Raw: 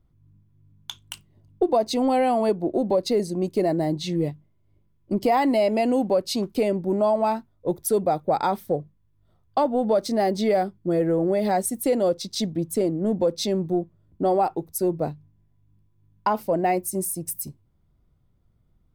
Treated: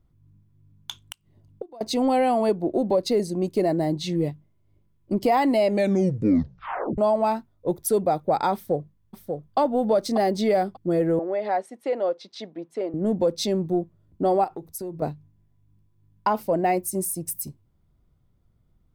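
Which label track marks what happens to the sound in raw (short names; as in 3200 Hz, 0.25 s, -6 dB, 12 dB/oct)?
1.030000	1.810000	flipped gate shuts at -19 dBFS, range -24 dB
5.650000	5.650000	tape stop 1.33 s
8.540000	9.580000	echo throw 0.59 s, feedback 15%, level -5.5 dB
11.190000	12.940000	BPF 510–2400 Hz
14.440000	15.020000	compressor 4:1, threshold -31 dBFS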